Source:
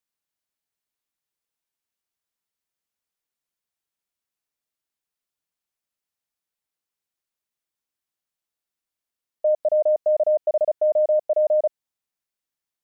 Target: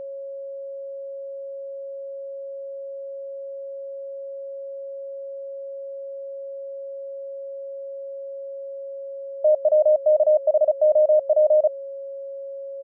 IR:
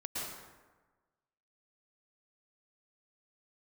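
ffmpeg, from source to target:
-af "aecho=1:1:1.5:0.37,aeval=exprs='val(0)+0.0282*sin(2*PI*550*n/s)':c=same"

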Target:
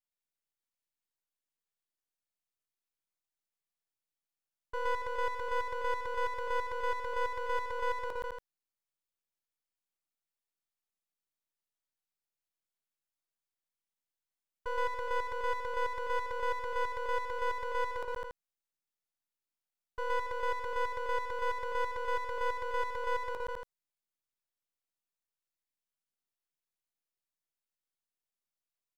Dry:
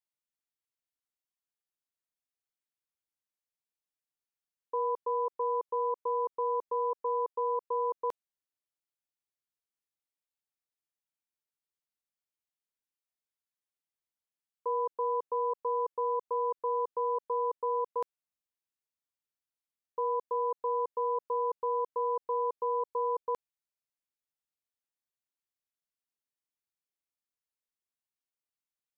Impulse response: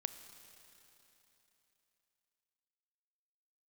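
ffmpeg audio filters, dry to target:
-af "aecho=1:1:119.5|204.1|282.8:0.891|0.708|0.398,aeval=exprs='max(val(0),0)':c=same,volume=-1dB"

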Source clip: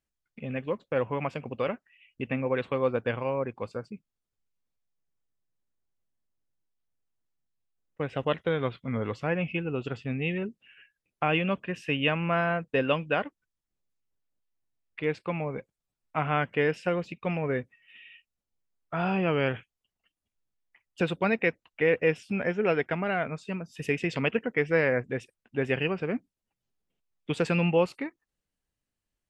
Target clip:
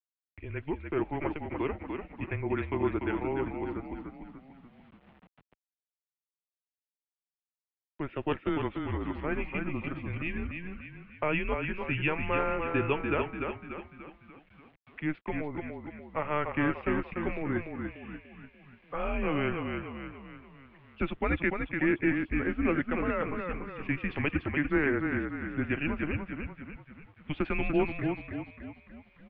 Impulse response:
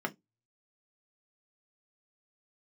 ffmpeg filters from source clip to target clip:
-filter_complex "[0:a]asplit=2[a][b];[b]asplit=6[c][d][e][f][g][h];[c]adelay=293,afreqshift=-31,volume=-5dB[i];[d]adelay=586,afreqshift=-62,volume=-11.2dB[j];[e]adelay=879,afreqshift=-93,volume=-17.4dB[k];[f]adelay=1172,afreqshift=-124,volume=-23.6dB[l];[g]adelay=1465,afreqshift=-155,volume=-29.8dB[m];[h]adelay=1758,afreqshift=-186,volume=-36dB[n];[i][j][k][l][m][n]amix=inputs=6:normalize=0[o];[a][o]amix=inputs=2:normalize=0,acrusher=bits=9:mix=0:aa=0.000001,acompressor=mode=upward:threshold=-44dB:ratio=2.5,highpass=f=170:t=q:w=0.5412,highpass=f=170:t=q:w=1.307,lowpass=f=3.3k:t=q:w=0.5176,lowpass=f=3.3k:t=q:w=0.7071,lowpass=f=3.3k:t=q:w=1.932,afreqshift=-150,volume=-3dB"

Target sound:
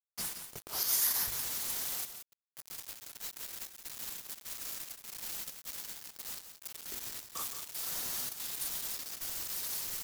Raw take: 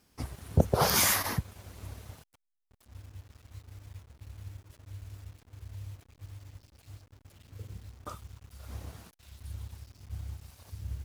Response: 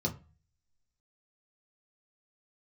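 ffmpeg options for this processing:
-filter_complex "[0:a]highpass=270,bandreject=f=50:t=h:w=6,bandreject=f=100:t=h:w=6,bandreject=f=150:t=h:w=6,bandreject=f=200:t=h:w=6,bandreject=f=250:t=h:w=6,bandreject=f=300:t=h:w=6,bandreject=f=350:t=h:w=6,bandreject=f=400:t=h:w=6,bandreject=f=450:t=h:w=6,agate=range=-33dB:threshold=-60dB:ratio=3:detection=peak,equalizer=f=630:t=o:w=0.67:g=-5,equalizer=f=2.5k:t=o:w=0.67:g=-5,equalizer=f=10k:t=o:w=0.67:g=-4,alimiter=limit=-21dB:level=0:latency=1:release=209,areverse,acompressor=threshold=-50dB:ratio=8,areverse,afreqshift=-77,atempo=1.1,crystalizer=i=9:c=0,acrusher=bits=6:mix=0:aa=0.000001,asplit=2[a][b];[b]aecho=0:1:175:0.335[c];[a][c]amix=inputs=2:normalize=0,volume=2.5dB"

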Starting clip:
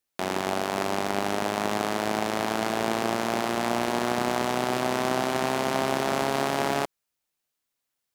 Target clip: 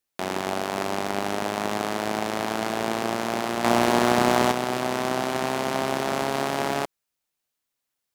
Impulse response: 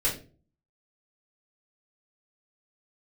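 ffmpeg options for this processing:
-filter_complex "[0:a]asettb=1/sr,asplit=3[a][b][c];[a]atrim=end=3.644[d];[b]atrim=start=3.64:end=4.52,asetpts=PTS-STARTPTS,afade=t=in:d=0.004:c=qsin,afade=t=out:st=0.876:d=0.004:c=qsin,acontrast=73[e];[c]atrim=start=4.516[f];[d][e]acrossfade=d=0.004:c1=hsin:c2=qsin[g];[g][f]acrossfade=d=0.004:c1=qsin:c2=hsin"

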